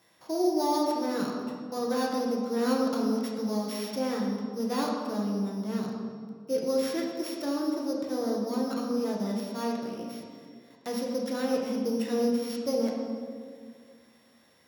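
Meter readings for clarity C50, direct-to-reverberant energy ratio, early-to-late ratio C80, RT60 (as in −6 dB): 2.0 dB, −2.0 dB, 4.0 dB, 2.0 s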